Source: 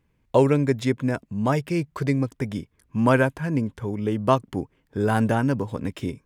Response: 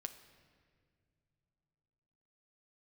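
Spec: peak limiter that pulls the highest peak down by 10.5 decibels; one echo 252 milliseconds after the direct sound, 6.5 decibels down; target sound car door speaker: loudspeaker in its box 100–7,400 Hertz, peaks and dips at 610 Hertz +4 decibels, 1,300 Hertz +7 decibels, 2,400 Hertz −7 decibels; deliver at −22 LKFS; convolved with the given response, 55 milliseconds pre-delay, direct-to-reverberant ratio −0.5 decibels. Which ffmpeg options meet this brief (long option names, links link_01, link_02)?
-filter_complex "[0:a]alimiter=limit=-15.5dB:level=0:latency=1,aecho=1:1:252:0.473,asplit=2[link_01][link_02];[1:a]atrim=start_sample=2205,adelay=55[link_03];[link_02][link_03]afir=irnorm=-1:irlink=0,volume=4dB[link_04];[link_01][link_04]amix=inputs=2:normalize=0,highpass=100,equalizer=frequency=610:width_type=q:width=4:gain=4,equalizer=frequency=1300:width_type=q:width=4:gain=7,equalizer=frequency=2400:width_type=q:width=4:gain=-7,lowpass=frequency=7400:width=0.5412,lowpass=frequency=7400:width=1.3066,volume=0.5dB"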